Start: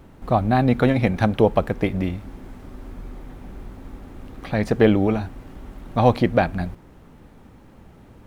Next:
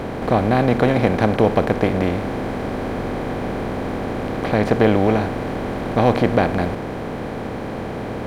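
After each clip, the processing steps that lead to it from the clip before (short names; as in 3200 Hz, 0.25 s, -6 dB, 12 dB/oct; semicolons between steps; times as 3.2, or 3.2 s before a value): per-bin compression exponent 0.4; gain -3 dB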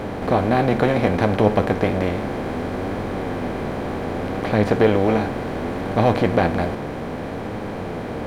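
flange 0.66 Hz, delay 9.4 ms, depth 4.7 ms, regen +50%; gain +3 dB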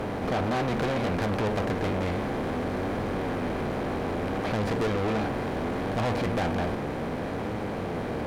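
tube stage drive 24 dB, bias 0.45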